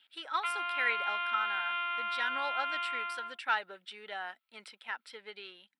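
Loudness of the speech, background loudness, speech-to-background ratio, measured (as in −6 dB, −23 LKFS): −37.0 LKFS, −34.0 LKFS, −3.0 dB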